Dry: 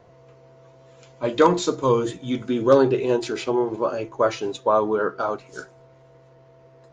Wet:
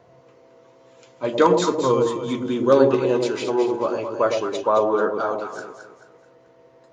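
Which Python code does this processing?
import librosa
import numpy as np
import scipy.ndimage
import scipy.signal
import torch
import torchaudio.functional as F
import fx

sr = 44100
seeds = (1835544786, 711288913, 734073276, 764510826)

y = fx.highpass(x, sr, hz=130.0, slope=6)
y = fx.echo_alternate(y, sr, ms=109, hz=820.0, feedback_pct=60, wet_db=-3.0)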